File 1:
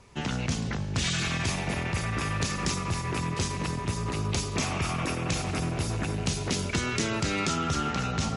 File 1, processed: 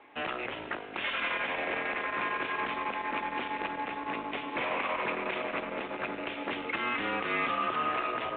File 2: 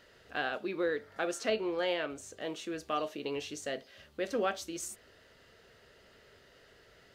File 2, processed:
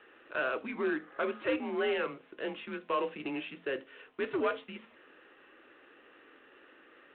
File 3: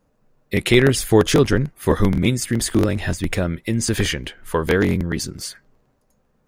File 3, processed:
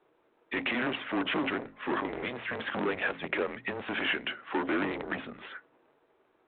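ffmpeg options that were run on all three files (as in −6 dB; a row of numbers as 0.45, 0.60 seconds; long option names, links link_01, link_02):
-af "bandreject=frequency=50:width_type=h:width=6,bandreject=frequency=100:width_type=h:width=6,bandreject=frequency=150:width_type=h:width=6,bandreject=frequency=200:width_type=h:width=6,bandreject=frequency=250:width_type=h:width=6,bandreject=frequency=300:width_type=h:width=6,bandreject=frequency=350:width_type=h:width=6,bandreject=frequency=400:width_type=h:width=6,alimiter=limit=-13dB:level=0:latency=1:release=47,aeval=exprs='0.224*(cos(1*acos(clip(val(0)/0.224,-1,1)))-cos(1*PI/2))+0.0316*(cos(5*acos(clip(val(0)/0.224,-1,1)))-cos(5*PI/2))':channel_layout=same,asoftclip=type=tanh:threshold=-21dB,highpass=frequency=440:width_type=q:width=0.5412,highpass=frequency=440:width_type=q:width=1.307,lowpass=frequency=3100:width_type=q:width=0.5176,lowpass=frequency=3100:width_type=q:width=0.7071,lowpass=frequency=3100:width_type=q:width=1.932,afreqshift=-130" -ar 8000 -c:a adpcm_g726 -b:a 32k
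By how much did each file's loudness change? −3.0, +1.0, −13.0 LU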